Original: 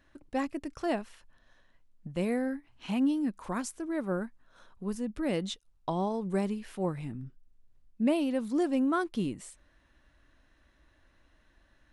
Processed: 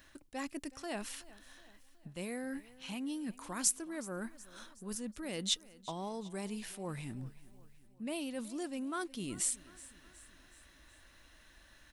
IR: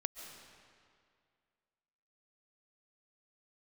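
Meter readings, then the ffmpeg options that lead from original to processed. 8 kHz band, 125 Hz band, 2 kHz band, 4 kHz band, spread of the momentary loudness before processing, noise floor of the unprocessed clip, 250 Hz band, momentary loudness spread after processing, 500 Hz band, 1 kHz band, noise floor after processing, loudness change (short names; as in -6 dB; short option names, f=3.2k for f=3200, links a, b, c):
+11.0 dB, -8.5 dB, -4.5 dB, +4.0 dB, 13 LU, -66 dBFS, -10.5 dB, 19 LU, -10.5 dB, -8.5 dB, -62 dBFS, -7.0 dB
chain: -af "highshelf=f=4.7k:g=-4.5,areverse,acompressor=threshold=-42dB:ratio=4,areverse,crystalizer=i=6.5:c=0,aecho=1:1:371|742|1113|1484:0.1|0.053|0.0281|0.0149,volume=1dB"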